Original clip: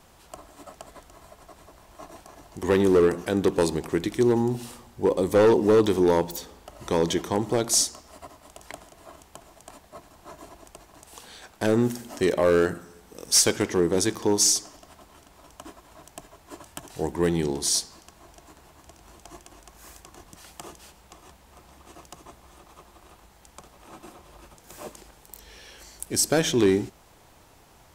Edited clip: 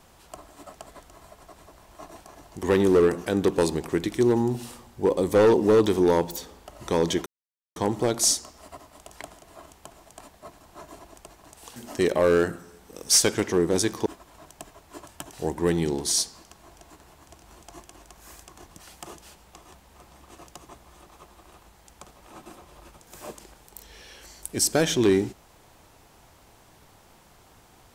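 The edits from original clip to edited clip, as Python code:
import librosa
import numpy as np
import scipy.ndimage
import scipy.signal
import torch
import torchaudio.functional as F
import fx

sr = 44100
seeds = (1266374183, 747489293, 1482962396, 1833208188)

y = fx.edit(x, sr, fx.insert_silence(at_s=7.26, length_s=0.5),
    fx.cut(start_s=11.26, length_s=0.72),
    fx.cut(start_s=14.28, length_s=1.35), tone=tone)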